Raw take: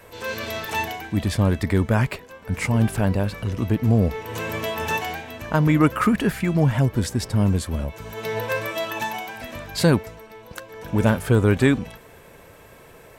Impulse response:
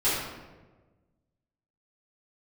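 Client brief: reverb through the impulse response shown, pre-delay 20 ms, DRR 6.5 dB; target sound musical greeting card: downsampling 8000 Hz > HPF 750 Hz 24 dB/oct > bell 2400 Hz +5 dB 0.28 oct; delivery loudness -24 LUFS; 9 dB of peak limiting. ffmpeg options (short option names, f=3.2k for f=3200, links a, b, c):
-filter_complex "[0:a]alimiter=limit=-12dB:level=0:latency=1,asplit=2[a][b];[1:a]atrim=start_sample=2205,adelay=20[c];[b][c]afir=irnorm=-1:irlink=0,volume=-19.5dB[d];[a][d]amix=inputs=2:normalize=0,aresample=8000,aresample=44100,highpass=f=750:w=0.5412,highpass=f=750:w=1.3066,equalizer=f=2.4k:t=o:w=0.28:g=5,volume=6.5dB"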